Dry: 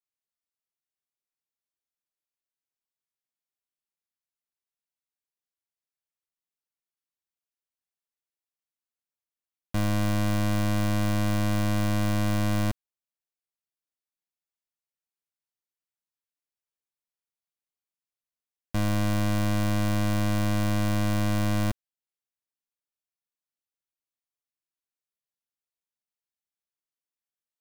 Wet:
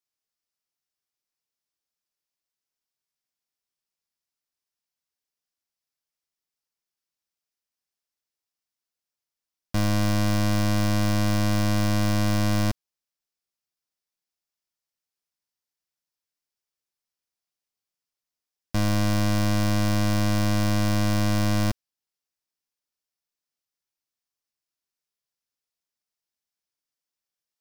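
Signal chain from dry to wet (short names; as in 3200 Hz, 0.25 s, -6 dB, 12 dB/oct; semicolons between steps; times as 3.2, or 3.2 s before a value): bell 5200 Hz +6.5 dB 0.51 oct; gain +2.5 dB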